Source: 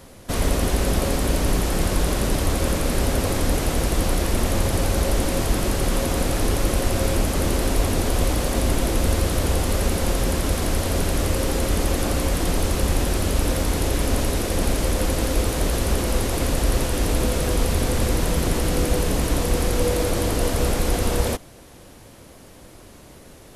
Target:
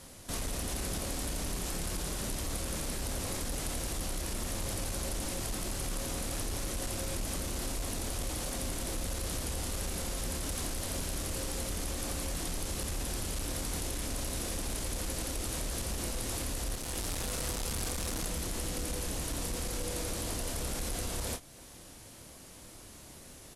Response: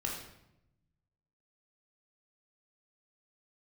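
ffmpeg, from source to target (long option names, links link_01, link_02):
-filter_complex "[0:a]asettb=1/sr,asplit=3[link_01][link_02][link_03];[link_01]atrim=end=16.754[link_04];[link_02]atrim=start=16.75:end=18.26,asetpts=PTS-STARTPTS,afade=type=in:duration=0.004:curve=qsin,afade=type=out:start_time=1.506:duration=0.004:curve=qsin,volume=27dB,asoftclip=hard,volume=-27dB[link_05];[link_03]atrim=start=18.256[link_06];[link_04][link_05]acrossfade=duration=0.004:curve1=hsin:curve2=qsin[link_07];[link_07][link_06]acrossfade=duration=0.004:curve1=qsin:curve2=hsin,asplit=2[link_08][link_09];[link_09]adelay=28,volume=-8.5dB[link_10];[link_08][link_10]amix=inputs=2:normalize=0,asoftclip=type=tanh:threshold=-13dB,lowpass=11000,equalizer=frequency=460:width_type=o:width=0.77:gain=-2.5,alimiter=limit=-21.5dB:level=0:latency=1:release=273,highshelf=frequency=4400:gain=11.5,volume=-8dB"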